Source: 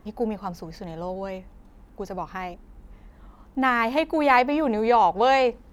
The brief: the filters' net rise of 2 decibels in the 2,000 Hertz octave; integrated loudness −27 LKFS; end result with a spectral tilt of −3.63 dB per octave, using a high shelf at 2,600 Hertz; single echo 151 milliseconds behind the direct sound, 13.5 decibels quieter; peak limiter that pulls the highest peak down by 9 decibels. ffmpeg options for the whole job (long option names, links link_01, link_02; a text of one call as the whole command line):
ffmpeg -i in.wav -af "equalizer=frequency=2000:width_type=o:gain=4,highshelf=frequency=2600:gain=-4,alimiter=limit=-14dB:level=0:latency=1,aecho=1:1:151:0.211,volume=-1.5dB" out.wav